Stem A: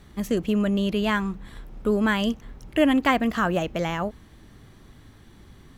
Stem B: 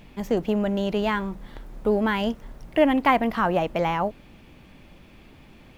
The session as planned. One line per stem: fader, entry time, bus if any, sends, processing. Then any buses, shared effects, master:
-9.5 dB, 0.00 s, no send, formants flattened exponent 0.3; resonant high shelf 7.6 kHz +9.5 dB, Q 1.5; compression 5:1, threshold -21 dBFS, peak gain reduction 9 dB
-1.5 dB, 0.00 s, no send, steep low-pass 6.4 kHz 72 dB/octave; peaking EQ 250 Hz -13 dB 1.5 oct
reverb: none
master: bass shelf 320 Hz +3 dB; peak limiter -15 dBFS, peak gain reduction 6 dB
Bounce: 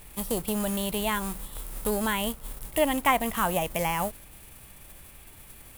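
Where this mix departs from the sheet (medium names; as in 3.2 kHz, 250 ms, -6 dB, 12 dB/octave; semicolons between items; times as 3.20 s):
stem B: missing steep low-pass 6.4 kHz 72 dB/octave; master: missing peak limiter -15 dBFS, peak gain reduction 6 dB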